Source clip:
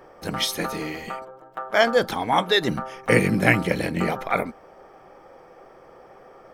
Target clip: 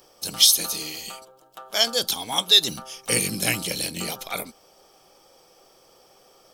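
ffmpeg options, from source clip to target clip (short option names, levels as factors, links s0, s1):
-af "aexciter=amount=10.7:drive=5.7:freq=2900,volume=0.335"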